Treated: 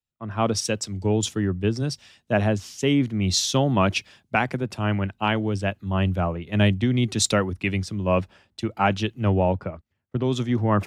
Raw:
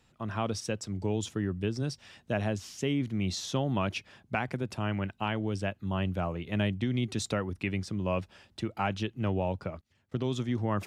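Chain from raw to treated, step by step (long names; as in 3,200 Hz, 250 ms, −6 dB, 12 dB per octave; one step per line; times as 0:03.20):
multiband upward and downward expander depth 100%
level +8.5 dB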